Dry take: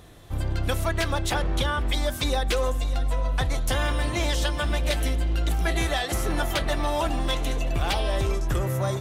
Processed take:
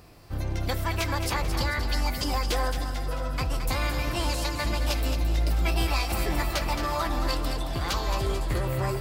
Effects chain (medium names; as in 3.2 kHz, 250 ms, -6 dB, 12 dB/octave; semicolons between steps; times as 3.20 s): formant shift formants +5 st; two-band feedback delay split 650 Hz, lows 562 ms, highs 220 ms, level -8 dB; trim -3 dB